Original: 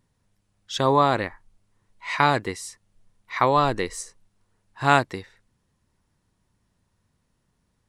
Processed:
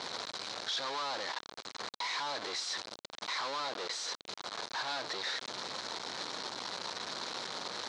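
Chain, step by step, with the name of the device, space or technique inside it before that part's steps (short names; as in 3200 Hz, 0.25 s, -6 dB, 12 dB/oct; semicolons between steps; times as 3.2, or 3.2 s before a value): home computer beeper (infinite clipping; speaker cabinet 540–5700 Hz, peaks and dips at 1900 Hz -4 dB, 2700 Hz -6 dB, 4100 Hz +8 dB); gain -7 dB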